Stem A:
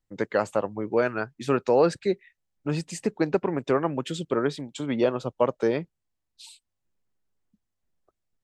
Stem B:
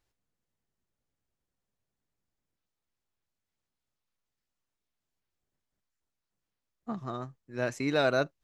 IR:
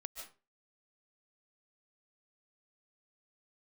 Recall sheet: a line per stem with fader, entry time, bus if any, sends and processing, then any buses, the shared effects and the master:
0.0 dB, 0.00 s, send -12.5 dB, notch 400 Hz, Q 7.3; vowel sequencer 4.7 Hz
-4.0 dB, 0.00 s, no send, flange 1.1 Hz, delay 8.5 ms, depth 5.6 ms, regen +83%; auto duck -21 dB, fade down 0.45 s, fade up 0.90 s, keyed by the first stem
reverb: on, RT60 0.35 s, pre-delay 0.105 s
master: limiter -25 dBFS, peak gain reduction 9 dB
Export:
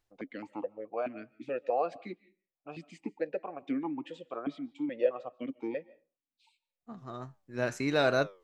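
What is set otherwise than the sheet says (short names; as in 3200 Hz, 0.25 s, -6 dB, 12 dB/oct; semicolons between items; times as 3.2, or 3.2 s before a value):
stem B -4.0 dB -> +4.5 dB; master: missing limiter -25 dBFS, peak gain reduction 9 dB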